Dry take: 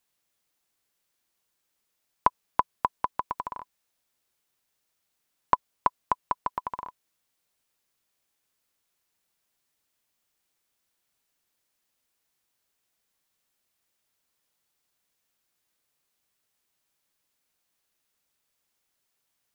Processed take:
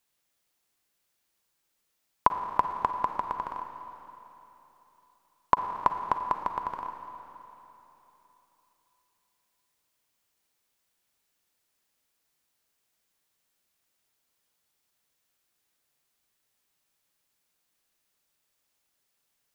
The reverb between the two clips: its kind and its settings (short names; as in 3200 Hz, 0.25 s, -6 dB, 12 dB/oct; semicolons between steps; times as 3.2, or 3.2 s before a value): Schroeder reverb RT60 3.4 s, DRR 6 dB